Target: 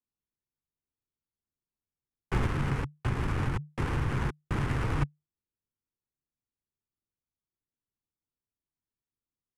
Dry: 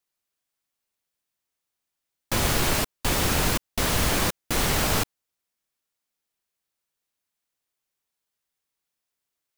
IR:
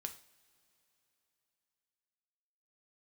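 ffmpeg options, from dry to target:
-filter_complex "[0:a]afreqshift=-150,adynamicsmooth=sensitivity=1.5:basefreq=700,equalizer=frequency=630:width_type=o:width=0.67:gain=-11,equalizer=frequency=4000:width_type=o:width=0.67:gain=-5,equalizer=frequency=10000:width_type=o:width=0.67:gain=7,asettb=1/sr,asplit=3[link_01][link_02][link_03];[link_01]atrim=end=2.444[link_04];[link_02]atrim=start=2.44:end=5.01,asetpts=PTS-STARTPTS,afade=type=in:duration=0.004:curve=qsin,afade=type=out:start_time=2.566:duration=0.004:curve=qsin,acompressor=threshold=-25dB:ratio=6[link_05];[link_03]atrim=start=5.006[link_06];[link_04][link_05]acrossfade=duration=0.004:curve1=hsin:curve2=qsin[link_07];[link_07][link_06]acrossfade=duration=0.004:curve1=qsin:curve2=hsin,highshelf=frequency=5000:gain=-6"

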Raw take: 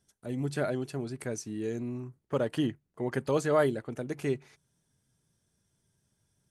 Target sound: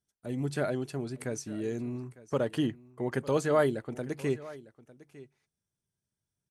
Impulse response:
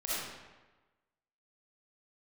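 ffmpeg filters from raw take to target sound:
-af "agate=range=-14dB:threshold=-57dB:ratio=16:detection=peak,aecho=1:1:903:0.112"

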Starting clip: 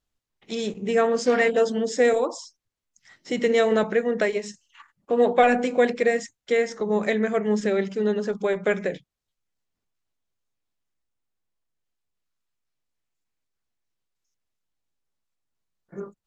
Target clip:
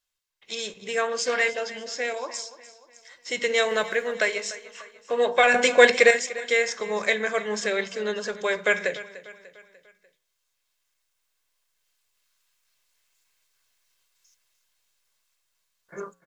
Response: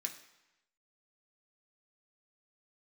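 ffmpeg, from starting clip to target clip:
-filter_complex "[0:a]flanger=delay=7.9:depth=1.5:regen=-90:speed=0.63:shape=sinusoidal,asettb=1/sr,asplit=3[link_01][link_02][link_03];[link_01]atrim=end=5.544[link_04];[link_02]atrim=start=5.54:end=6.11,asetpts=PTS-STARTPTS,afade=type=in:duration=0.004:curve=qsin,afade=type=out:start_time=0.566:duration=0.004:curve=qsin,acontrast=86[link_05];[link_03]atrim=start=6.106[link_06];[link_04][link_05]acrossfade=duration=0.004:curve1=hsin:curve2=qsin[link_07];[link_07][link_06]acrossfade=duration=0.004:curve1=qsin:curve2=hsin,tiltshelf=frequency=690:gain=-10,aecho=1:1:1.9:0.33,asettb=1/sr,asplit=3[link_08][link_09][link_10];[link_08]atrim=end=1.534[link_11];[link_09]atrim=start=1.53:end=2.34,asetpts=PTS-STARTPTS,afade=type=in:duration=0.004:curve=qsin,afade=type=out:start_time=0.806:duration=0.004:curve=qsin,highpass=210,equalizer=frequency=480:width_type=q:width=4:gain=-7,equalizer=frequency=1200:width_type=q:width=4:gain=-6,equalizer=frequency=1800:width_type=q:width=4:gain=-4,equalizer=frequency=3700:width_type=q:width=4:gain=-7,lowpass=frequency=5800:width=0.5412,lowpass=frequency=5800:width=1.3066[link_12];[link_10]atrim=start=2.336[link_13];[link_11][link_12]acrossfade=duration=0.004:curve1=hsin:curve2=qsin[link_14];[link_14][link_13]acrossfade=duration=0.004:curve1=qsin:curve2=hsin,asettb=1/sr,asplit=3[link_15][link_16][link_17];[link_15]atrim=end=3.694[link_18];[link_16]atrim=start=3.69:end=4.15,asetpts=PTS-STARTPTS,afade=type=in:duration=0.004:curve=qsin,afade=type=out:start_time=0.456:duration=0.004:curve=qsin,aeval=exprs='sgn(val(0))*max(abs(val(0))-0.00178,0)':channel_layout=same[link_19];[link_17]atrim=start=4.146[link_20];[link_18][link_19]acrossfade=duration=0.004:curve1=hsin:curve2=qsin[link_21];[link_21][link_20]acrossfade=duration=0.004:curve1=qsin:curve2=hsin,aecho=1:1:296|592|888|1184:0.141|0.0636|0.0286|0.0129,dynaudnorm=framelen=1000:gausssize=7:maxgain=16dB,volume=-1dB"

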